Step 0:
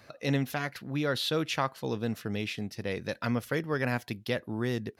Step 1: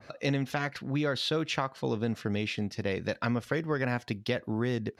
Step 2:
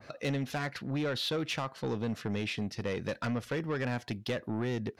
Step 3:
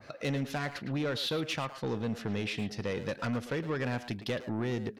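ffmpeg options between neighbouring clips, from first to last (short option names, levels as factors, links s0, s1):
-af "lowpass=7500,acompressor=threshold=0.0355:ratio=6,adynamicequalizer=threshold=0.00398:dfrequency=2000:dqfactor=0.7:tfrequency=2000:tqfactor=0.7:attack=5:release=100:ratio=0.375:range=1.5:mode=cutabove:tftype=highshelf,volume=1.58"
-af "asoftclip=type=tanh:threshold=0.0473"
-filter_complex "[0:a]asplit=2[s0][s1];[s1]adelay=110,highpass=300,lowpass=3400,asoftclip=type=hard:threshold=0.0168,volume=0.447[s2];[s0][s2]amix=inputs=2:normalize=0"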